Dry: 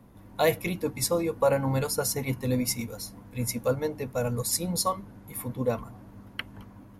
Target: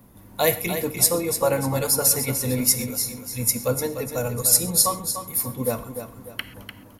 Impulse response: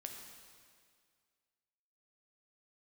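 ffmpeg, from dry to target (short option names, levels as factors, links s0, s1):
-filter_complex "[0:a]aemphasis=mode=production:type=50kf,aecho=1:1:297|594|891|1188:0.355|0.135|0.0512|0.0195,asplit=2[s0][s1];[1:a]atrim=start_sample=2205,atrim=end_sample=6174[s2];[s1][s2]afir=irnorm=-1:irlink=0,volume=1.12[s3];[s0][s3]amix=inputs=2:normalize=0,volume=0.75"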